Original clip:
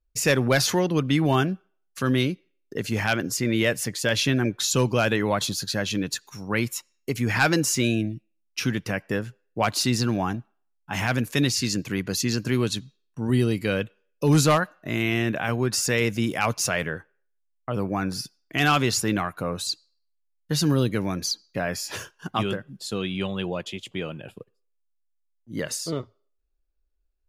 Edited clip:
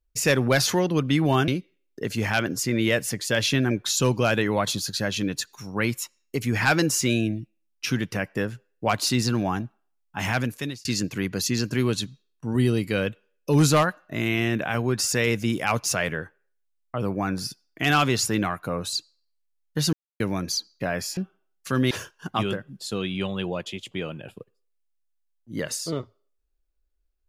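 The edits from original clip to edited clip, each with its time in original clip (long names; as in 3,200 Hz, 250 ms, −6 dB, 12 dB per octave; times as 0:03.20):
0:01.48–0:02.22: move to 0:21.91
0:11.08–0:11.59: fade out
0:20.67–0:20.94: silence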